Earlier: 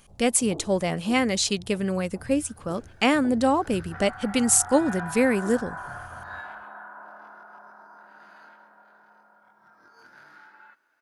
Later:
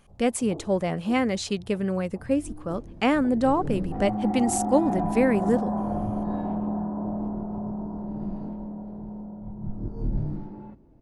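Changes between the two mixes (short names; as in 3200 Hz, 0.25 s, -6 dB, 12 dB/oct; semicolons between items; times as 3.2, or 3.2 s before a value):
second sound: remove resonant high-pass 1500 Hz, resonance Q 9.6; master: add high shelf 2700 Hz -11.5 dB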